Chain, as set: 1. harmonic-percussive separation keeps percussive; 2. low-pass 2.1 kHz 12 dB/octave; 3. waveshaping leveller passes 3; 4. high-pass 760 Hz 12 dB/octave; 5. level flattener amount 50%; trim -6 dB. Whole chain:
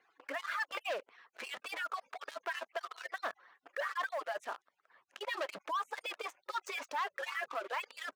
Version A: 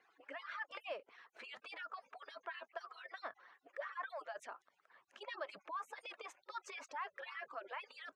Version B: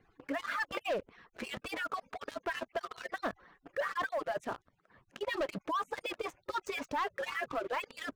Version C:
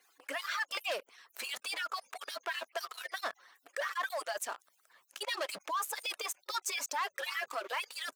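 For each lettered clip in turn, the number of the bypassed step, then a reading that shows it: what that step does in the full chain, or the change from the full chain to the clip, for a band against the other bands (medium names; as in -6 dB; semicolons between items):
3, crest factor change +1.5 dB; 4, 250 Hz band +13.5 dB; 2, 8 kHz band +13.5 dB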